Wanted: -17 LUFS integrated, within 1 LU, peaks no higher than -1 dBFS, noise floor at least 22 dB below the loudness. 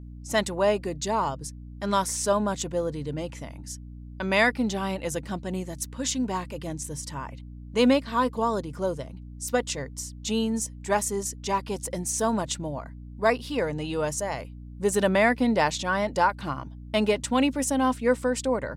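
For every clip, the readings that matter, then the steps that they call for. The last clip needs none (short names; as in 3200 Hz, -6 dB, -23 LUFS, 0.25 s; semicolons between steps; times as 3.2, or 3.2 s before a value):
hum 60 Hz; harmonics up to 300 Hz; hum level -39 dBFS; loudness -27.0 LUFS; peak -9.0 dBFS; loudness target -17.0 LUFS
-> de-hum 60 Hz, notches 5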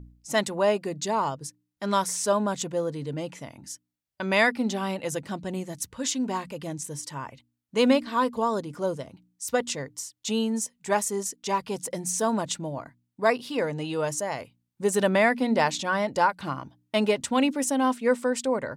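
hum none; loudness -27.0 LUFS; peak -8.5 dBFS; loudness target -17.0 LUFS
-> gain +10 dB; limiter -1 dBFS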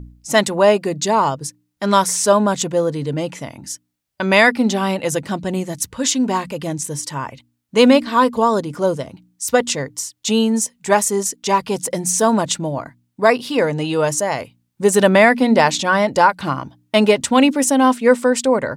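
loudness -17.0 LUFS; peak -1.0 dBFS; noise floor -70 dBFS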